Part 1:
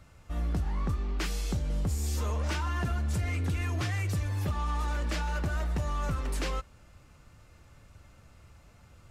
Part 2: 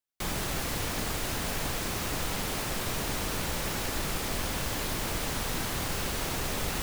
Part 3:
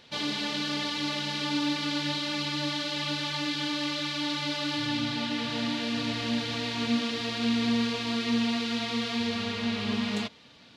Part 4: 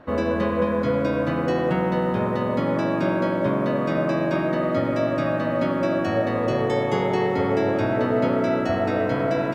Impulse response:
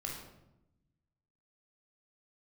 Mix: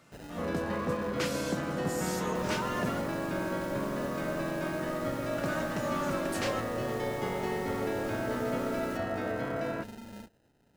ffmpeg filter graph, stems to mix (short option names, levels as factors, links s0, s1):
-filter_complex "[0:a]highpass=f=160:w=0.5412,highpass=f=160:w=1.3066,volume=1.12,asplit=3[s0][s1][s2];[s0]atrim=end=3.07,asetpts=PTS-STARTPTS,afade=t=out:st=3.066:d=0.004:c=hsin[s3];[s1]atrim=start=3.07:end=5.38,asetpts=PTS-STARTPTS,volume=0[s4];[s2]atrim=start=5.38,asetpts=PTS-STARTPTS,afade=t=in:d=0.004:c=hsin[s5];[s3][s4][s5]concat=n=3:v=0:a=1[s6];[1:a]adelay=2150,volume=0.15[s7];[2:a]acompressor=threshold=0.0398:ratio=6,acrusher=samples=39:mix=1:aa=0.000001,volume=0.211[s8];[3:a]equalizer=f=1600:t=o:w=1:g=4,adelay=300,volume=0.266[s9];[s6][s7][s8][s9]amix=inputs=4:normalize=0"